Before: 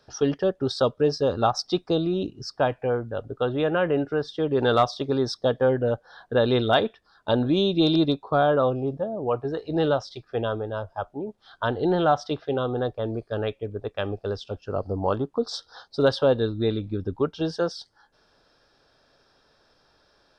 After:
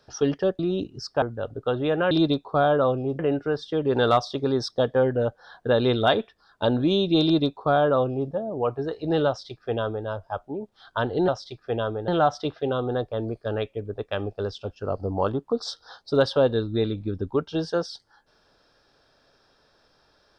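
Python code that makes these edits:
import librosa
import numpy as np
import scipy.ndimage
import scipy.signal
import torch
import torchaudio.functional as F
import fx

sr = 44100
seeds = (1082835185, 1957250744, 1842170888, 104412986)

y = fx.edit(x, sr, fx.cut(start_s=0.59, length_s=1.43),
    fx.cut(start_s=2.65, length_s=0.31),
    fx.duplicate(start_s=7.89, length_s=1.08, to_s=3.85),
    fx.duplicate(start_s=9.93, length_s=0.8, to_s=11.94), tone=tone)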